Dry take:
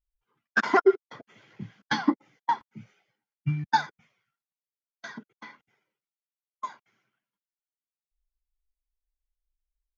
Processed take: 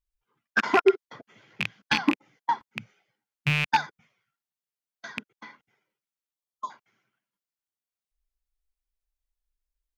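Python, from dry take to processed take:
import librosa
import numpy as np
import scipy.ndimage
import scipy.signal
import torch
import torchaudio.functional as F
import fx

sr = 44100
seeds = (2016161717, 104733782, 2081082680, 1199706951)

y = fx.rattle_buzz(x, sr, strikes_db=-37.0, level_db=-13.0)
y = fx.dynamic_eq(y, sr, hz=4100.0, q=0.73, threshold_db=-44.0, ratio=4.0, max_db=4, at=(0.85, 1.98))
y = fx.spec_erase(y, sr, start_s=6.33, length_s=0.38, low_hz=1300.0, high_hz=3100.0)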